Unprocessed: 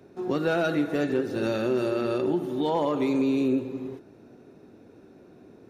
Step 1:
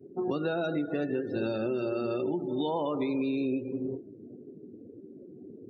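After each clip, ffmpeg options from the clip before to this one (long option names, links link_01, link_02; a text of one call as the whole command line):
ffmpeg -i in.wav -filter_complex "[0:a]acrossover=split=1200|3100[link_01][link_02][link_03];[link_01]acompressor=threshold=-35dB:ratio=4[link_04];[link_02]acompressor=threshold=-52dB:ratio=4[link_05];[link_03]acompressor=threshold=-50dB:ratio=4[link_06];[link_04][link_05][link_06]amix=inputs=3:normalize=0,afftdn=noise_reduction=34:noise_floor=-44,volume=5.5dB" out.wav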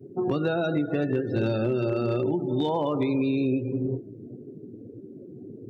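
ffmpeg -i in.wav -af "equalizer=frequency=120:width=2.3:gain=10.5,asoftclip=type=hard:threshold=-21dB,volume=4dB" out.wav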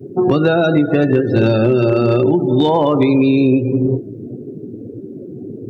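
ffmpeg -i in.wav -af "acontrast=76,volume=5.5dB" out.wav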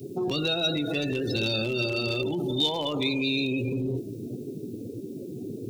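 ffmpeg -i in.wav -af "alimiter=limit=-16dB:level=0:latency=1:release=16,aexciter=amount=6.6:drive=8.6:freq=2500,volume=-6.5dB" out.wav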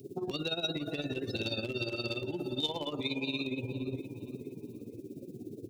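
ffmpeg -i in.wav -filter_complex "[0:a]tremolo=f=17:d=0.74,asplit=2[link_01][link_02];[link_02]adelay=465,lowpass=frequency=2600:poles=1,volume=-11.5dB,asplit=2[link_03][link_04];[link_04]adelay=465,lowpass=frequency=2600:poles=1,volume=0.44,asplit=2[link_05][link_06];[link_06]adelay=465,lowpass=frequency=2600:poles=1,volume=0.44,asplit=2[link_07][link_08];[link_08]adelay=465,lowpass=frequency=2600:poles=1,volume=0.44[link_09];[link_01][link_03][link_05][link_07][link_09]amix=inputs=5:normalize=0,volume=-5dB" out.wav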